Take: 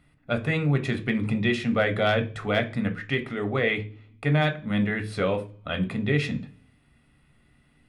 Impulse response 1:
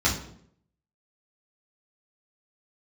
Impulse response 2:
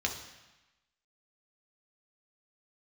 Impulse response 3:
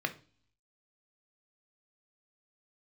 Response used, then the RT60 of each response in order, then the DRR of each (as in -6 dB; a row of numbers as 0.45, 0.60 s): 3; 0.65 s, 1.1 s, not exponential; -7.5, 1.0, 6.5 dB